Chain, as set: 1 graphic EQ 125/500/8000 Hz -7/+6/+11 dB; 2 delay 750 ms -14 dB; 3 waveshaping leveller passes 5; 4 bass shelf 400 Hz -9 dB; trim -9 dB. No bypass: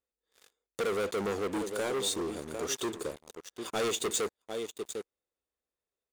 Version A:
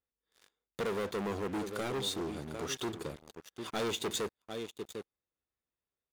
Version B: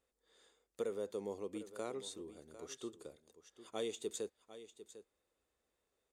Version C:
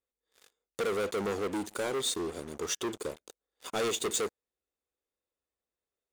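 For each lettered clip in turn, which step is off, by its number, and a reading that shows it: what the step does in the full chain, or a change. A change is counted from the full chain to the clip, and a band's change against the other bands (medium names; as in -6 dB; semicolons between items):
1, loudness change -3.5 LU; 3, crest factor change +6.0 dB; 2, momentary loudness spread change -2 LU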